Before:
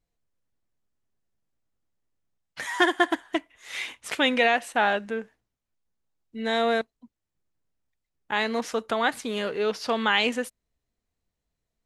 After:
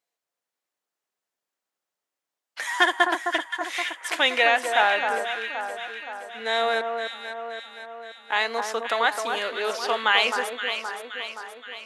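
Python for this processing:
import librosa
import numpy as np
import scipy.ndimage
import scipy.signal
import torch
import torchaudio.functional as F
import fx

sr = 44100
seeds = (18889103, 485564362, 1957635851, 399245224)

p1 = scipy.signal.sosfilt(scipy.signal.butter(2, 600.0, 'highpass', fs=sr, output='sos'), x)
p2 = p1 + fx.echo_alternate(p1, sr, ms=261, hz=1500.0, feedback_pct=74, wet_db=-5, dry=0)
y = F.gain(torch.from_numpy(p2), 3.0).numpy()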